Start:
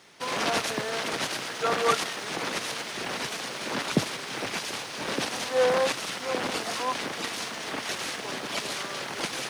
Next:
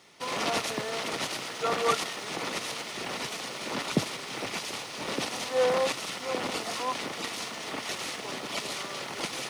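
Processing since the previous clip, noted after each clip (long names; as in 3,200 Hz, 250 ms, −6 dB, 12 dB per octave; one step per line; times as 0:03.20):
notch filter 1,600 Hz, Q 8
level −2 dB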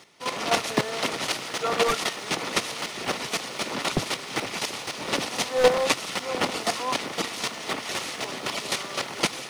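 wavefolder on the positive side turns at −20.5 dBFS
automatic gain control gain up to 4 dB
square-wave tremolo 3.9 Hz, depth 65%, duty 15%
level +7 dB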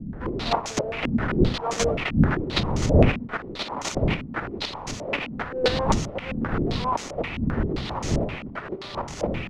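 each half-wave held at its own peak
wind on the microphone 200 Hz −19 dBFS
low-pass on a step sequencer 7.6 Hz 230–6,500 Hz
level −9 dB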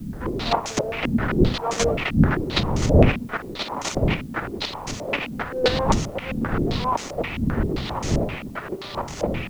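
bit-depth reduction 10 bits, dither triangular
level +2 dB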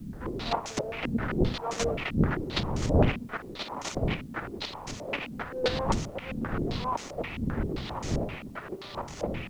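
highs frequency-modulated by the lows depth 0.62 ms
level −7.5 dB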